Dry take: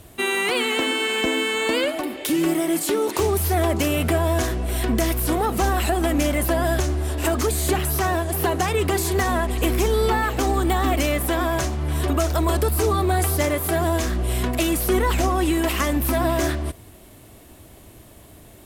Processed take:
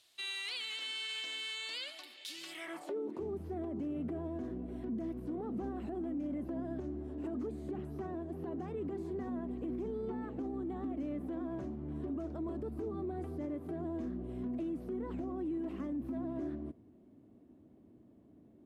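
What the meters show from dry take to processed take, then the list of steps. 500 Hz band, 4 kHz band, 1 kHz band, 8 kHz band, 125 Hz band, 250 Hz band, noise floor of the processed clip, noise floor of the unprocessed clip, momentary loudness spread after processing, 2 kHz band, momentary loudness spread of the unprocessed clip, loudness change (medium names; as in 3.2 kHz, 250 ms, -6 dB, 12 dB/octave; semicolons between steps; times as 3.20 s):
-18.5 dB, under -10 dB, -25.5 dB, under -25 dB, -22.5 dB, -13.5 dB, -61 dBFS, -47 dBFS, 4 LU, -22.0 dB, 3 LU, -18.0 dB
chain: band-pass sweep 4.2 kHz -> 250 Hz, 2.48–3.07 s; peak limiter -25.5 dBFS, peak gain reduction 10.5 dB; trim -6 dB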